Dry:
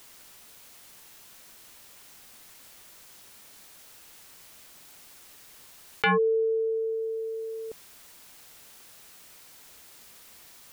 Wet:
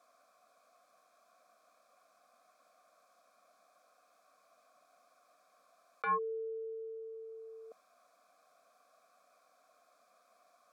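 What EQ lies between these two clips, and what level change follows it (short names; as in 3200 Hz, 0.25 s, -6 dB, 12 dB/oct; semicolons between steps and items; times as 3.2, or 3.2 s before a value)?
vowel filter a; fixed phaser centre 570 Hz, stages 8; +6.0 dB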